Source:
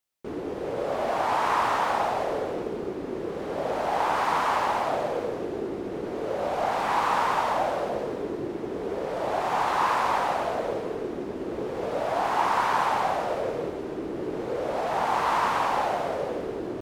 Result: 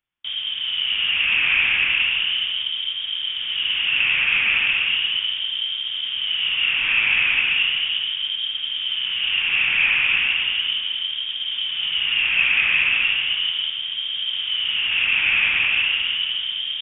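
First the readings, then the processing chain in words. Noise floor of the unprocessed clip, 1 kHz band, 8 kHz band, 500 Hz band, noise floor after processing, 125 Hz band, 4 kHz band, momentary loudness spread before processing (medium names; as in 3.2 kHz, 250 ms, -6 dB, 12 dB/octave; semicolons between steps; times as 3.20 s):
-35 dBFS, -16.0 dB, under -35 dB, under -20 dB, -29 dBFS, no reading, +23.5 dB, 9 LU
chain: frequency inversion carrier 3.5 kHz; peaking EQ 540 Hz -10.5 dB 1.8 oct; trim +6.5 dB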